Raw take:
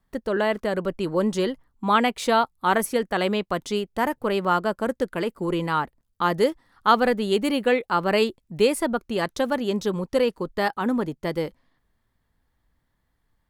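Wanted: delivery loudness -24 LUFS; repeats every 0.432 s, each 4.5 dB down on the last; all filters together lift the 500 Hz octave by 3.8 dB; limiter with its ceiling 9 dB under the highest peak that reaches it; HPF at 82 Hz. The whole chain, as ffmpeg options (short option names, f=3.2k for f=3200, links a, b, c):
-af "highpass=82,equalizer=f=500:t=o:g=4.5,alimiter=limit=-11.5dB:level=0:latency=1,aecho=1:1:432|864|1296|1728|2160|2592|3024|3456|3888:0.596|0.357|0.214|0.129|0.0772|0.0463|0.0278|0.0167|0.01,volume=-2dB"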